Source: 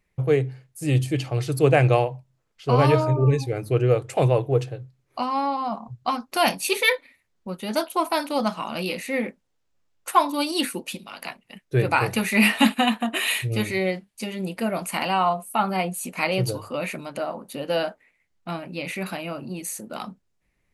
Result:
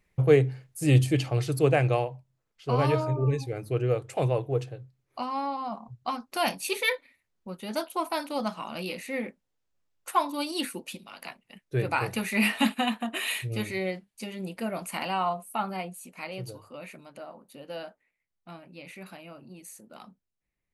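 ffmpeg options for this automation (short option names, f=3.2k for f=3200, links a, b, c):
-af "volume=1dB,afade=t=out:st=0.98:d=0.86:silence=0.421697,afade=t=out:st=15.49:d=0.57:silence=0.421697"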